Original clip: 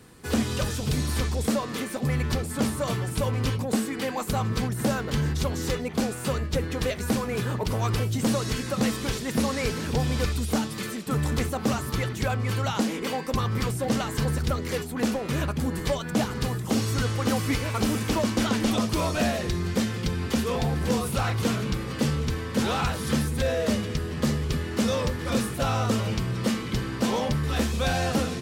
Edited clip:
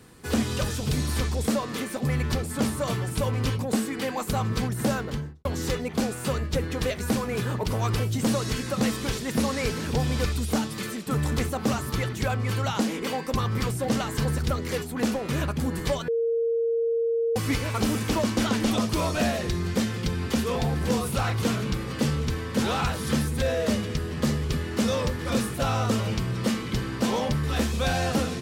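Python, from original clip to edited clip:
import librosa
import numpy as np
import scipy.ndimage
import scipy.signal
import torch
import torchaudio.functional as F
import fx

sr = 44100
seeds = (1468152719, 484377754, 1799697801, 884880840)

y = fx.studio_fade_out(x, sr, start_s=4.94, length_s=0.51)
y = fx.edit(y, sr, fx.bleep(start_s=16.08, length_s=1.28, hz=461.0, db=-21.5), tone=tone)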